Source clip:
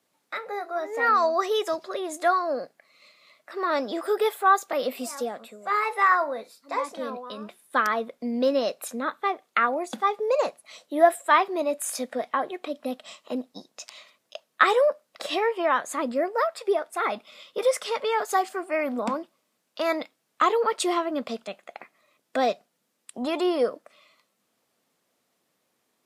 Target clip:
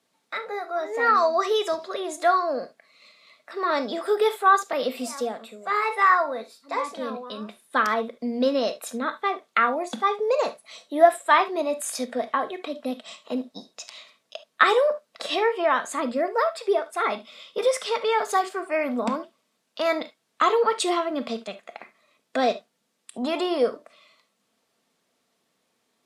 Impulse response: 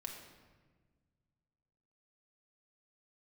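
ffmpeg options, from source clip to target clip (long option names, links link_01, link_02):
-filter_complex "[0:a]lowpass=11000,asplit=2[link_01][link_02];[link_02]equalizer=frequency=3800:width_type=o:width=0.77:gain=4[link_03];[1:a]atrim=start_sample=2205,atrim=end_sample=3528[link_04];[link_03][link_04]afir=irnorm=-1:irlink=0,volume=4.5dB[link_05];[link_01][link_05]amix=inputs=2:normalize=0,volume=-5dB"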